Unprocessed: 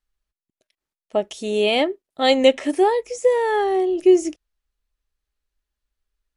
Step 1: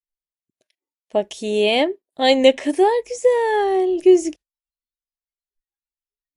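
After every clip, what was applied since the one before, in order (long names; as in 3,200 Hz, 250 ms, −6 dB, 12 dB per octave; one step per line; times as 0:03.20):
noise reduction from a noise print of the clip's start 28 dB
notch filter 1,300 Hz, Q 6.3
level +1.5 dB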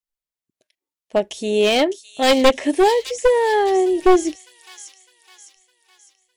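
wavefolder on the positive side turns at −11 dBFS
delay with a high-pass on its return 607 ms, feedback 47%, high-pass 3,900 Hz, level −5.5 dB
level +1.5 dB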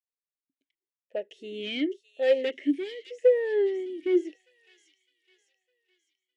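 formant filter swept between two vowels e-i 0.89 Hz
level −3 dB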